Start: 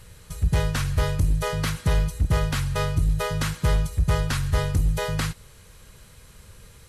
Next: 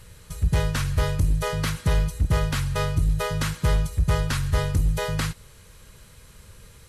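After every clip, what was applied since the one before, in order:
notch filter 750 Hz, Q 17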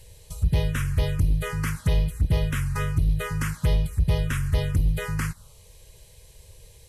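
phaser swept by the level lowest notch 210 Hz, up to 1,400 Hz, full sweep at −17 dBFS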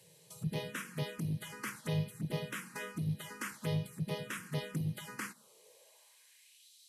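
gate on every frequency bin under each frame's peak −10 dB weak
high-pass filter sweep 150 Hz → 3,900 Hz, 0:05.18–0:06.72
level −8 dB

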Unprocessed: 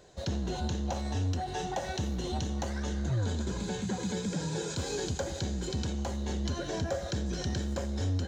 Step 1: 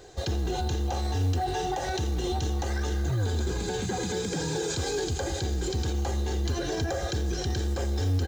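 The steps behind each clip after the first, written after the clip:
comb filter 2.5 ms, depth 57%
brickwall limiter −27.5 dBFS, peak gain reduction 8.5 dB
floating-point word with a short mantissa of 4 bits
level +6.5 dB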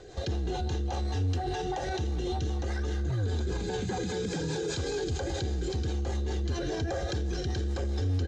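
high-frequency loss of the air 65 metres
rotating-speaker cabinet horn 5 Hz
brickwall limiter −28 dBFS, peak gain reduction 7 dB
level +4 dB

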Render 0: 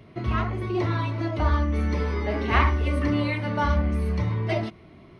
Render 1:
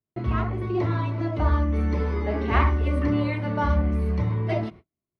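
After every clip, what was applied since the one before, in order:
noise gate −42 dBFS, range −43 dB
high-shelf EQ 2,000 Hz −9 dB
level +1 dB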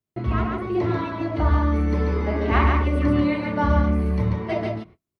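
single-tap delay 140 ms −3.5 dB
level +1.5 dB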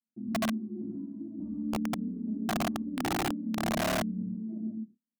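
flat-topped band-pass 230 Hz, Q 3.7
wrap-around overflow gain 25 dB

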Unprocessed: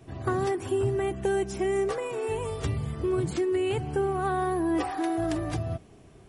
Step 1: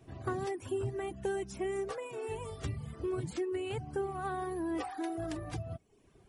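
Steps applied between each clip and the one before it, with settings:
reverb reduction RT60 0.77 s
level −7 dB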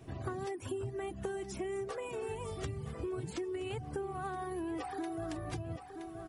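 repeating echo 971 ms, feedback 34%, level −14 dB
downward compressor 4 to 1, threshold −42 dBFS, peak gain reduction 10.5 dB
level +5 dB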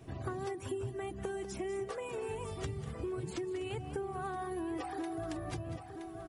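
single-tap delay 195 ms −12.5 dB

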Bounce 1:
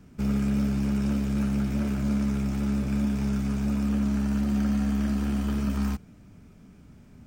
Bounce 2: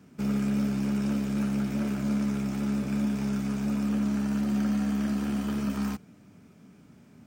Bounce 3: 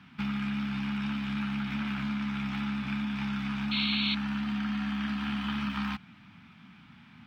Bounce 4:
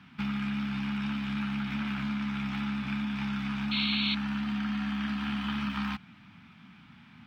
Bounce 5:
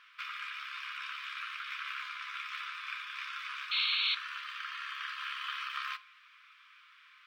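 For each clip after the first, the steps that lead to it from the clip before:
high-pass filter 150 Hz 12 dB per octave
downward compressor 4 to 1, threshold −30 dBFS, peak gain reduction 6.5 dB; drawn EQ curve 230 Hz 0 dB, 510 Hz −21 dB, 830 Hz +6 dB, 3,500 Hz +13 dB, 6,900 Hz −13 dB; sound drawn into the spectrogram noise, 0:03.71–0:04.15, 2,100–4,400 Hz −31 dBFS
no processing that can be heard
linear-phase brick-wall high-pass 1,000 Hz; on a send at −14 dB: convolution reverb RT60 0.50 s, pre-delay 9 ms

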